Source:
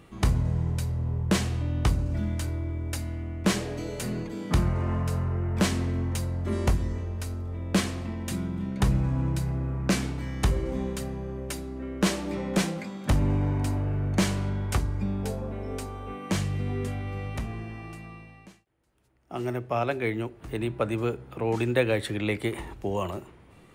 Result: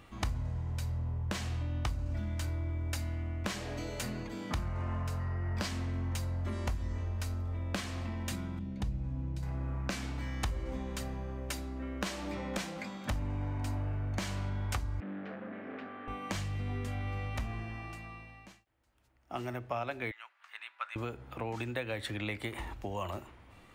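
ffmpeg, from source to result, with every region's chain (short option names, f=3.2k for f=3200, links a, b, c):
-filter_complex "[0:a]asettb=1/sr,asplit=3[a][b][c];[a]atrim=end=5.204[d];[b]atrim=start=5.2:end=5.68,asetpts=PTS-STARTPTS,afade=t=in:d=0.004:c=qsin,afade=t=out:st=0.476:d=0.004:c=qsin,equalizer=f=4.8k:t=o:w=0.23:g=9,aeval=exprs='val(0)+0.00398*sin(2*PI*1900*n/s)':c=same[e];[c]atrim=start=5.676[f];[d][e]acrossfade=d=0.004:c1=hsin:c2=qsin[g];[g][f]acrossfade=d=0.004:c1=qsin:c2=hsin,asettb=1/sr,asplit=3[h][i][j];[h]atrim=end=8.594[k];[i]atrim=start=8.59:end=9.43,asetpts=PTS-STARTPTS,afade=t=in:d=0.004:c=qsin,afade=t=out:st=0.836:d=0.004:c=qsin,lowpass=f=2.8k:p=1,equalizer=f=1.3k:t=o:w=2.2:g=-12.5[l];[j]atrim=start=9.426[m];[k][l]acrossfade=d=0.004:c1=hsin:c2=qsin[n];[n][m]acrossfade=d=0.004:c1=qsin:c2=hsin,asettb=1/sr,asplit=3[o][p][q];[o]atrim=end=15.004[r];[p]atrim=start=15:end=16.08,asetpts=PTS-STARTPTS,afade=t=in:d=0.004:c=qsin,afade=t=out:st=1.076:d=0.004:c=qsin,volume=35.5dB,asoftclip=hard,volume=-35.5dB,highpass=f=180:w=0.5412,highpass=f=180:w=1.3066,equalizer=f=190:t=q:w=4:g=6,equalizer=f=310:t=q:w=4:g=7,equalizer=f=930:t=q:w=4:g=-10,equalizer=f=1.7k:t=q:w=4:g=7,lowpass=f=2.8k:w=0.5412,lowpass=f=2.8k:w=1.3066[s];[q]atrim=start=16.076[t];[r][s]acrossfade=d=0.004:c1=hsin:c2=qsin[u];[u][t]acrossfade=d=0.004:c1=qsin:c2=hsin,asettb=1/sr,asplit=3[v][w][x];[v]atrim=end=20.114[y];[w]atrim=start=20.11:end=20.96,asetpts=PTS-STARTPTS,afade=t=in:d=0.004:c=qsin,afade=t=out:st=0.846:d=0.004:c=qsin,highpass=f=1.2k:w=0.5412,highpass=f=1.2k:w=1.3066,aemphasis=mode=reproduction:type=75kf[z];[x]atrim=start=20.956[aa];[y][z]acrossfade=d=0.004:c1=hsin:c2=qsin[ab];[ab][aa]acrossfade=d=0.004:c1=qsin:c2=hsin,acompressor=threshold=-29dB:ratio=6,equalizer=f=160:t=o:w=0.67:g=-10,equalizer=f=400:t=o:w=0.67:g=-9,equalizer=f=10k:t=o:w=0.67:g=-6"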